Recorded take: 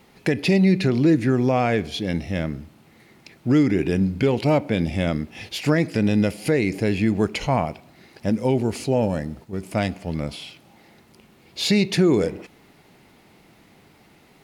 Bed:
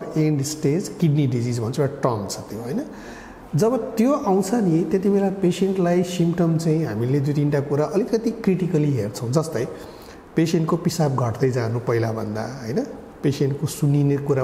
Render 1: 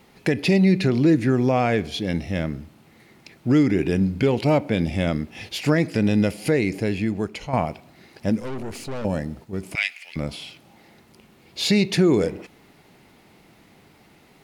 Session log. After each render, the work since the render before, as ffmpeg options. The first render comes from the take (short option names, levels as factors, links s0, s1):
-filter_complex "[0:a]asettb=1/sr,asplit=3[s0][s1][s2];[s0]atrim=end=8.404[s3];[s1]atrim=start=8.4:end=9.05,asetpts=PTS-STARTPTS,afade=t=in:d=0.004:c=qsin,afade=t=out:st=0.646:d=0.004:c=qsin,aeval=exprs='(tanh(28.2*val(0)+0.65)-tanh(0.65))/28.2':c=same[s4];[s2]atrim=start=9.046[s5];[s3][s4]acrossfade=d=0.004:c1=hsin:c2=qsin[s6];[s6][s5]acrossfade=d=0.004:c1=qsin:c2=hsin,asettb=1/sr,asplit=3[s7][s8][s9];[s7]atrim=end=9.754[s10];[s8]atrim=start=9.75:end=10.16,asetpts=PTS-STARTPTS,afade=t=in:d=0.004:c=qsin,afade=t=out:st=0.406:d=0.004:c=qsin,highpass=f=2300:t=q:w=4.2[s11];[s9]atrim=start=10.156[s12];[s10][s11]acrossfade=d=0.004:c1=hsin:c2=qsin[s13];[s13][s12]acrossfade=d=0.004:c1=qsin:c2=hsin,asplit=2[s14][s15];[s14]atrim=end=7.53,asetpts=PTS-STARTPTS,afade=t=out:st=6.55:d=0.98:silence=0.334965[s16];[s15]atrim=start=7.53,asetpts=PTS-STARTPTS,afade=t=in:d=0.004:c=hsin:silence=0.334965[s17];[s16][s17]concat=n=2:v=0:a=1"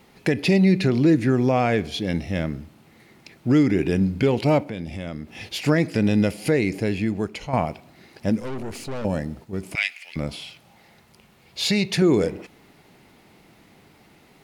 -filter_complex "[0:a]asplit=3[s0][s1][s2];[s0]afade=t=out:st=4.63:d=0.02[s3];[s1]acompressor=threshold=0.02:ratio=2:attack=3.2:release=140:knee=1:detection=peak,afade=t=in:st=4.63:d=0.02,afade=t=out:st=5.39:d=0.02[s4];[s2]afade=t=in:st=5.39:d=0.02[s5];[s3][s4][s5]amix=inputs=3:normalize=0,asettb=1/sr,asplit=3[s6][s7][s8];[s6]atrim=end=10.414[s9];[s7]atrim=start=10.41:end=12.02,asetpts=PTS-STARTPTS,afade=t=in:d=0.004:c=qsin,afade=t=out:st=1.606:d=0.004:c=qsin,equalizer=f=300:w=1.5:g=-8[s10];[s8]atrim=start=12.016[s11];[s9][s10]acrossfade=d=0.004:c1=hsin:c2=qsin[s12];[s12][s11]acrossfade=d=0.004:c1=qsin:c2=hsin"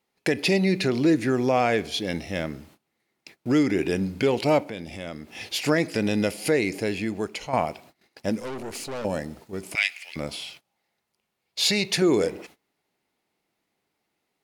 -af "agate=range=0.0708:threshold=0.00501:ratio=16:detection=peak,bass=f=250:g=-9,treble=f=4000:g=4"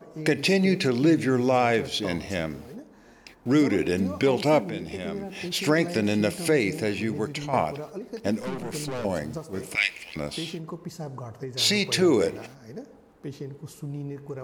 -filter_complex "[1:a]volume=0.158[s0];[0:a][s0]amix=inputs=2:normalize=0"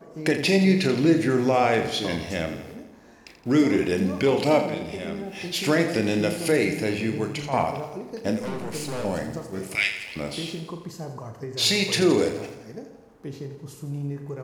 -filter_complex "[0:a]asplit=2[s0][s1];[s1]adelay=36,volume=0.376[s2];[s0][s2]amix=inputs=2:normalize=0,asplit=2[s3][s4];[s4]aecho=0:1:84|168|252|336|420|504|588:0.299|0.176|0.104|0.0613|0.0362|0.0213|0.0126[s5];[s3][s5]amix=inputs=2:normalize=0"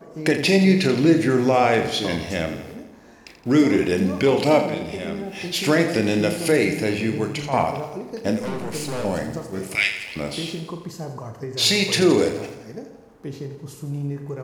-af "volume=1.41"